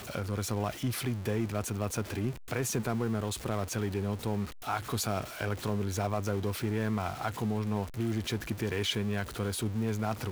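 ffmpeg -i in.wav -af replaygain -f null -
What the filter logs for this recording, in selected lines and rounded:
track_gain = +16.2 dB
track_peak = 0.100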